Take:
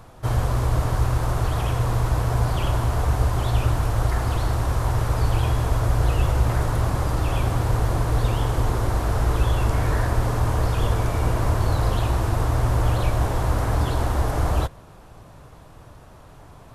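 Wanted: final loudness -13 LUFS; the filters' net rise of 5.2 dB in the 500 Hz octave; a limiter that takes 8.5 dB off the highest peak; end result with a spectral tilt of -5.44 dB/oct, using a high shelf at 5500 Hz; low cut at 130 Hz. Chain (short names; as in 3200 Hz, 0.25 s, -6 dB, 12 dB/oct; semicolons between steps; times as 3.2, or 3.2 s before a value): HPF 130 Hz; bell 500 Hz +6.5 dB; high shelf 5500 Hz +4.5 dB; gain +15.5 dB; limiter -3.5 dBFS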